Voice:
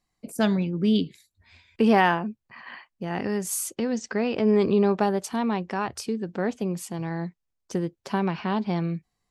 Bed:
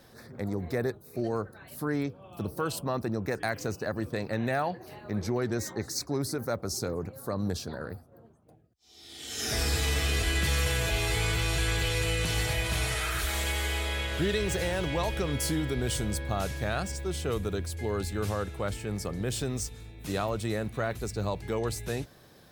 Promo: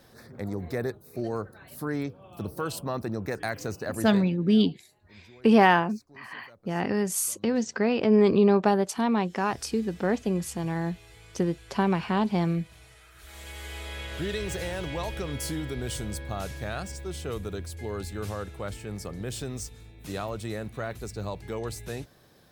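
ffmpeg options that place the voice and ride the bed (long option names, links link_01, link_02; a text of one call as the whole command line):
ffmpeg -i stem1.wav -i stem2.wav -filter_complex "[0:a]adelay=3650,volume=1dB[link_01];[1:a]volume=20dB,afade=type=out:start_time=4.05:duration=0.26:silence=0.0707946,afade=type=in:start_time=13.15:duration=1.19:silence=0.0944061[link_02];[link_01][link_02]amix=inputs=2:normalize=0" out.wav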